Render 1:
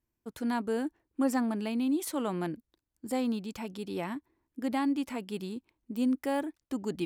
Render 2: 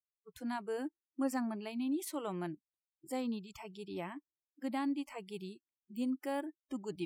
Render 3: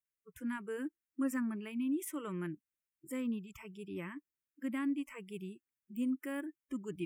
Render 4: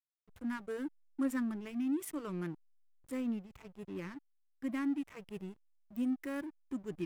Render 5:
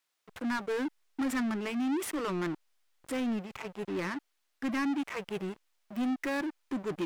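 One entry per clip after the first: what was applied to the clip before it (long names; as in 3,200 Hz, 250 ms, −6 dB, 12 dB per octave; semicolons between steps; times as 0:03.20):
noise reduction from a noise print of the clip's start 30 dB; level −6 dB
phaser with its sweep stopped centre 1,800 Hz, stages 4; level +2.5 dB
slack as between gear wheels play −43.5 dBFS; level +1 dB
mid-hump overdrive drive 26 dB, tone 4,400 Hz, clips at −24 dBFS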